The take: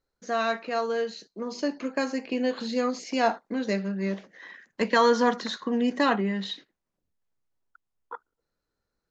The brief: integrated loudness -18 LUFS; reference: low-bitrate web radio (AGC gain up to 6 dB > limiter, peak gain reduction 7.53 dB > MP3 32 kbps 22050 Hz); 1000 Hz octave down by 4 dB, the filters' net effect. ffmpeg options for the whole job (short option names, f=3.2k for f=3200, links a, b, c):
-af "equalizer=f=1k:t=o:g=-5.5,dynaudnorm=m=6dB,alimiter=limit=-18.5dB:level=0:latency=1,volume=13dB" -ar 22050 -c:a libmp3lame -b:a 32k